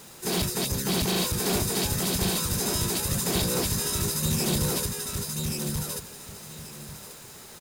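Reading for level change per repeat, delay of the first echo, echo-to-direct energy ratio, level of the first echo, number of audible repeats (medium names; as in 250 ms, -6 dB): -13.0 dB, 1135 ms, -3.0 dB, -3.0 dB, 2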